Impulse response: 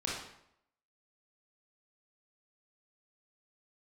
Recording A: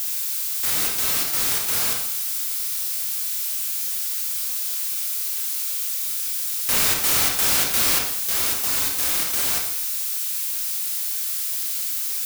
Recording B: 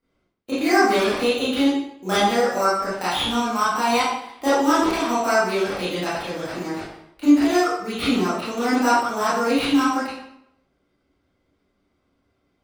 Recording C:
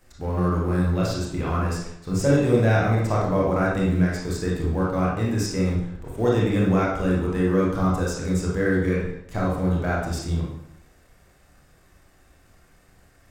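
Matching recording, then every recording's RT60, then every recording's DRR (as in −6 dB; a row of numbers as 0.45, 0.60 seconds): C; 0.75, 0.75, 0.75 seconds; −0.5, −12.5, −5.0 decibels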